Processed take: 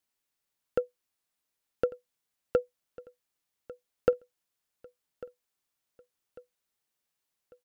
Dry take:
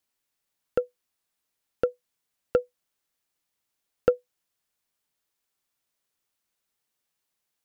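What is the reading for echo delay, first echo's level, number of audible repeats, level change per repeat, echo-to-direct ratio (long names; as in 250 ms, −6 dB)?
1,147 ms, −19.5 dB, 3, −7.5 dB, −18.5 dB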